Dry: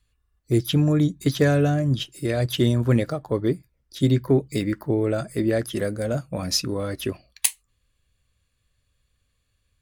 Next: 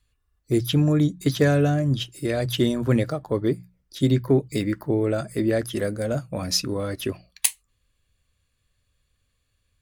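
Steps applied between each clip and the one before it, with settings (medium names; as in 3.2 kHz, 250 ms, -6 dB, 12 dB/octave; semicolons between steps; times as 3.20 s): hum notches 60/120/180 Hz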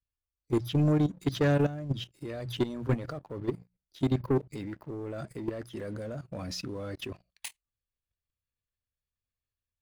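peaking EQ 12 kHz -11 dB 1.6 oct; waveshaping leveller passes 2; level held to a coarse grid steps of 14 dB; trim -9 dB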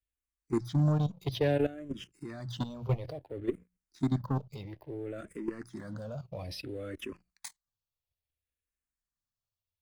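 barber-pole phaser -0.59 Hz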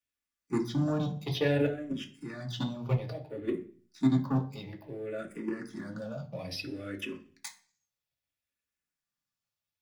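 reverberation RT60 0.45 s, pre-delay 3 ms, DRR 1.5 dB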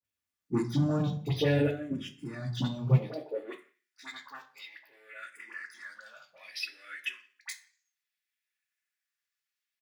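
phase dispersion highs, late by 47 ms, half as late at 1.3 kHz; high-pass sweep 83 Hz -> 1.8 kHz, 2.77–3.78 s; speakerphone echo 160 ms, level -27 dB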